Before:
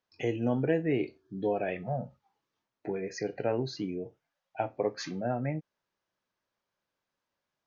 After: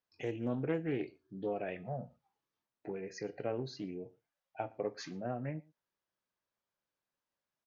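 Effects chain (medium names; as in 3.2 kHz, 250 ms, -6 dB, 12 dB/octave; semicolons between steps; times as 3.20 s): echo from a far wall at 20 m, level -25 dB; loudspeaker Doppler distortion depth 0.23 ms; trim -7 dB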